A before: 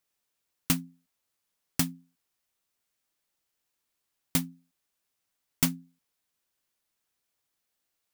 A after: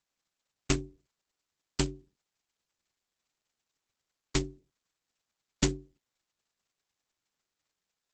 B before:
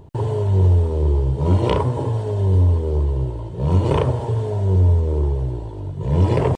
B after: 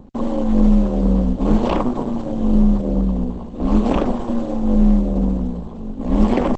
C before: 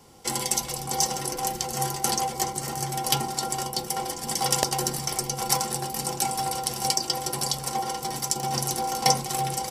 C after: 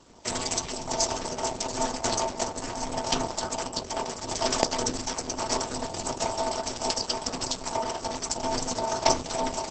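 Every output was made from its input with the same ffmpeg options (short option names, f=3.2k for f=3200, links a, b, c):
-filter_complex "[0:a]acrossover=split=370|1200[a][b][c];[c]asoftclip=type=hard:threshold=-15.5dB[d];[a][b][d]amix=inputs=3:normalize=0,aeval=exprs='val(0)*sin(2*PI*120*n/s)':c=same,volume=4.5dB" -ar 48000 -c:a libopus -b:a 10k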